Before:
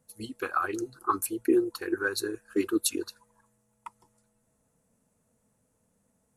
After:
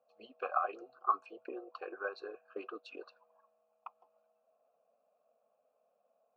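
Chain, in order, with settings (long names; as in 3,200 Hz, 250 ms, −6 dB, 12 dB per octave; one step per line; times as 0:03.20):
downward compressor 3 to 1, threshold −26 dBFS, peak gain reduction 6.5 dB
formant filter a
loudspeaker in its box 290–4,100 Hz, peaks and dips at 330 Hz −10 dB, 570 Hz +9 dB, 950 Hz −4 dB, 2,200 Hz −7 dB, 3,600 Hz −7 dB
level +9.5 dB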